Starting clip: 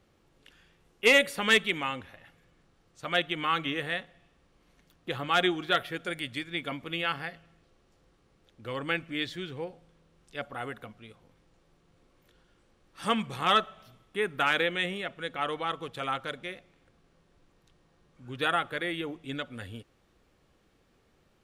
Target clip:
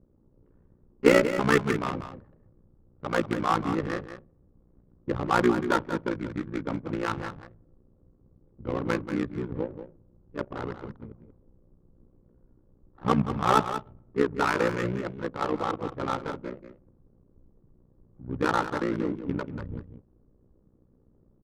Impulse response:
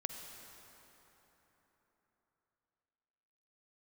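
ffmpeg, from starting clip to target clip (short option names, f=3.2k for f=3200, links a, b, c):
-filter_complex "[0:a]lowpass=1.2k,equalizer=f=720:w=4.7:g=-11.5,asplit=2[a][b];[b]asetrate=29433,aresample=44100,atempo=1.49831,volume=-4dB[c];[a][c]amix=inputs=2:normalize=0,tremolo=f=61:d=0.824,adynamicsmooth=sensitivity=8:basefreq=540,aecho=1:1:186:0.299,volume=9dB"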